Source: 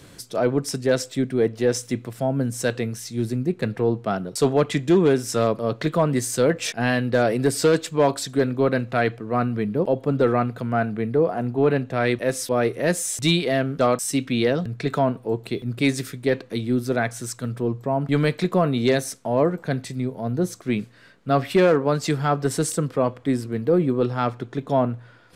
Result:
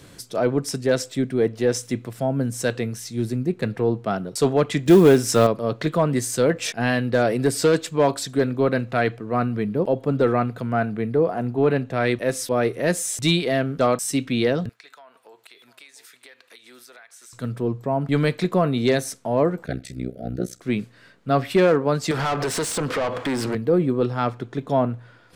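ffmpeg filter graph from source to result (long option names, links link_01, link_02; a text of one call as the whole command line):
ffmpeg -i in.wav -filter_complex "[0:a]asettb=1/sr,asplit=3[link_01][link_02][link_03];[link_01]atrim=end=4.864[link_04];[link_02]atrim=start=4.86:end=5.47,asetpts=PTS-STARTPTS,afade=type=in:duration=0.004:curve=qsin,afade=type=out:start_time=0.606:duration=0.004:curve=qsin,acontrast=32,acrusher=bits=7:mode=log:mix=0:aa=0.000001[link_05];[link_03]atrim=start=5.466[link_06];[link_04][link_05]acrossfade=duration=0.004:curve1=hsin:curve2=qsin[link_07];[link_07][link_06]acrossfade=duration=0.004:curve1=qsin:curve2=hsin,asettb=1/sr,asplit=3[link_08][link_09][link_10];[link_08]atrim=end=14.694[link_11];[link_09]atrim=start=14.69:end=17.33,asetpts=PTS-STARTPTS,afade=type=in:duration=0.004:curve=qsin,afade=type=out:start_time=2.636:duration=0.004:curve=qsin,highpass=1200,acompressor=threshold=-43dB:ratio=12:attack=3.2:release=140:knee=1:detection=peak,aecho=1:1:699:0.158,atrim=end_sample=116424[link_12];[link_10]atrim=start=17.326[link_13];[link_11][link_12]acrossfade=duration=0.004:curve1=hsin:curve2=qsin[link_14];[link_14][link_13]acrossfade=duration=0.004:curve1=qsin:curve2=hsin,asettb=1/sr,asplit=3[link_15][link_16][link_17];[link_15]atrim=end=19.664[link_18];[link_16]atrim=start=19.66:end=20.61,asetpts=PTS-STARTPTS,afade=type=in:duration=0.004:curve=qsin,afade=type=out:start_time=0.946:duration=0.004:curve=qsin,asuperstop=centerf=950:order=20:qfactor=1.8,tremolo=f=62:d=0.947[link_19];[link_17]atrim=start=20.606[link_20];[link_18][link_19]acrossfade=duration=0.004:curve1=hsin:curve2=qsin[link_21];[link_21][link_20]acrossfade=duration=0.004:curve1=qsin:curve2=hsin,asettb=1/sr,asplit=3[link_22][link_23][link_24];[link_22]atrim=end=22.114[link_25];[link_23]atrim=start=22.11:end=23.55,asetpts=PTS-STARTPTS,afade=type=in:duration=0.004:curve=qsin,afade=type=out:start_time=1.436:duration=0.004:curve=qsin,acompressor=threshold=-29dB:ratio=6:attack=3.2:release=140:knee=1:detection=peak,asplit=2[link_26][link_27];[link_27]highpass=frequency=720:poles=1,volume=30dB,asoftclip=type=tanh:threshold=-15.5dB[link_28];[link_26][link_28]amix=inputs=2:normalize=0,lowpass=frequency=3900:poles=1,volume=-6dB[link_29];[link_24]atrim=start=23.546[link_30];[link_25][link_29]acrossfade=duration=0.004:curve1=hsin:curve2=qsin[link_31];[link_31][link_30]acrossfade=duration=0.004:curve1=qsin:curve2=hsin" out.wav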